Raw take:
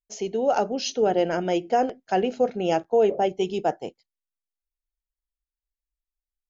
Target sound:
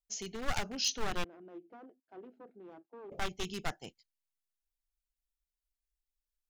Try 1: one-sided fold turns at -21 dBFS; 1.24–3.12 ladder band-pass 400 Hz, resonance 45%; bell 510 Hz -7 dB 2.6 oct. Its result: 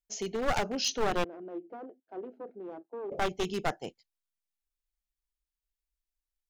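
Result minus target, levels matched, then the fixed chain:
500 Hz band +7.0 dB
one-sided fold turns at -21 dBFS; 1.24–3.12 ladder band-pass 400 Hz, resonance 45%; bell 510 Hz -18.5 dB 2.6 oct

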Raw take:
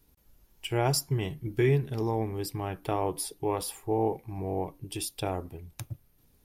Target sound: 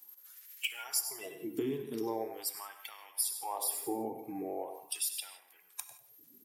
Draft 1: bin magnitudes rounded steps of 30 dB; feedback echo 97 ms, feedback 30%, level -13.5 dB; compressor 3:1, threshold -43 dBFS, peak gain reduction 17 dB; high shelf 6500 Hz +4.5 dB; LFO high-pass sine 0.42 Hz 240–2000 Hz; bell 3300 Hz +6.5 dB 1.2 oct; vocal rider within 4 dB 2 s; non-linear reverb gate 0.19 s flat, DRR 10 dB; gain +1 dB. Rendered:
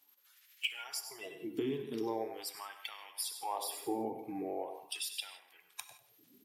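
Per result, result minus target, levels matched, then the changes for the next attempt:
8000 Hz band -4.5 dB; 4000 Hz band +3.5 dB
change: high shelf 6500 Hz +16 dB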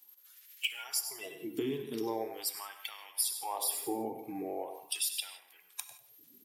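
4000 Hz band +3.0 dB
remove: bell 3300 Hz +6.5 dB 1.2 oct

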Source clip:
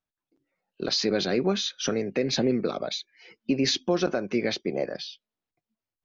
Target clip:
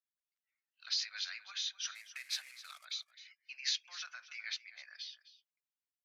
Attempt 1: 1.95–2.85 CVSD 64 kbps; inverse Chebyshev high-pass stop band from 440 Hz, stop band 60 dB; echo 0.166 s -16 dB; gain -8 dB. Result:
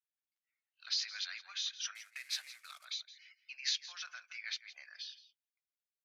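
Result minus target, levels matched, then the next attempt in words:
echo 93 ms early
1.95–2.85 CVSD 64 kbps; inverse Chebyshev high-pass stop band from 440 Hz, stop band 60 dB; echo 0.259 s -16 dB; gain -8 dB

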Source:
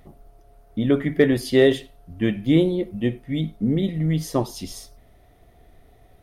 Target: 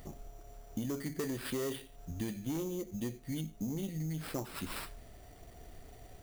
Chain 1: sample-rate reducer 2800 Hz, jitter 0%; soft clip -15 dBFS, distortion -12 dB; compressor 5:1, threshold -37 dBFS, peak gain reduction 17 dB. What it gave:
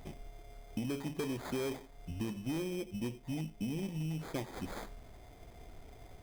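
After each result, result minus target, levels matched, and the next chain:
8000 Hz band -4.5 dB; sample-rate reducer: distortion +5 dB
sample-rate reducer 2800 Hz, jitter 0%; soft clip -15 dBFS, distortion -12 dB; compressor 5:1, threshold -37 dBFS, peak gain reduction 17 dB; high shelf 6500 Hz +8.5 dB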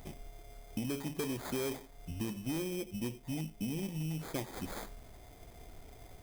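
sample-rate reducer: distortion +5 dB
sample-rate reducer 6500 Hz, jitter 0%; soft clip -15 dBFS, distortion -11 dB; compressor 5:1, threshold -37 dBFS, peak gain reduction 17 dB; high shelf 6500 Hz +8.5 dB

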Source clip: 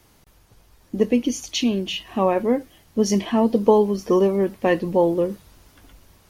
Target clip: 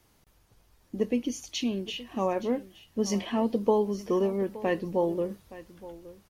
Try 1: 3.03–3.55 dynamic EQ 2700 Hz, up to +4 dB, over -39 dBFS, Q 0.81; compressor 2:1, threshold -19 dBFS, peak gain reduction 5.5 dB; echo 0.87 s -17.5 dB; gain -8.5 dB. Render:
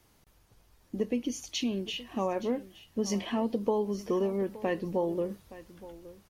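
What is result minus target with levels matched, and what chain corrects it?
compressor: peak gain reduction +5.5 dB
3.03–3.55 dynamic EQ 2700 Hz, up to +4 dB, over -39 dBFS, Q 0.81; echo 0.87 s -17.5 dB; gain -8.5 dB

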